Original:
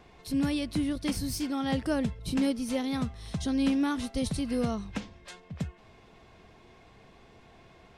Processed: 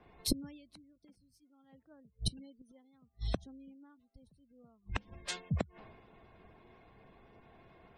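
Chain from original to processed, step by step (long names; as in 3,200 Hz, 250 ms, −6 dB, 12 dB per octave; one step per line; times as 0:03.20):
gate with flip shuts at −26 dBFS, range −28 dB
gate on every frequency bin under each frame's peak −25 dB strong
multiband upward and downward expander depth 100%
level +1 dB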